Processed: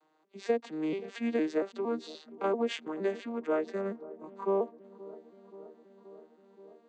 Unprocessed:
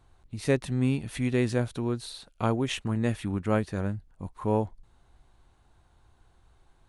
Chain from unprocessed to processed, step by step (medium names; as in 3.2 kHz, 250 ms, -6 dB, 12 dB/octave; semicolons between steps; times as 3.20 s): vocoder on a broken chord major triad, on D#3, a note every 230 ms; high-pass 350 Hz 24 dB/octave; compression 6:1, threshold -31 dBFS, peak gain reduction 7.5 dB; feedback echo behind a low-pass 527 ms, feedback 74%, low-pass 770 Hz, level -17.5 dB; trim +6.5 dB